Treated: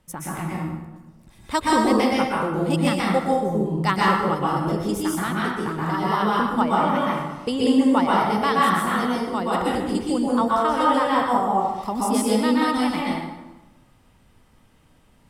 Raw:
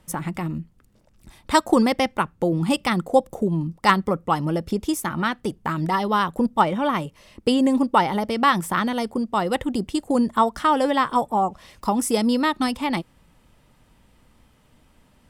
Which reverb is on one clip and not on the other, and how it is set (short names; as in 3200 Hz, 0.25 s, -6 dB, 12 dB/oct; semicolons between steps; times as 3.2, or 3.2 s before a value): plate-style reverb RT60 1.1 s, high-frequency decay 0.7×, pre-delay 0.11 s, DRR -5.5 dB; gain -6 dB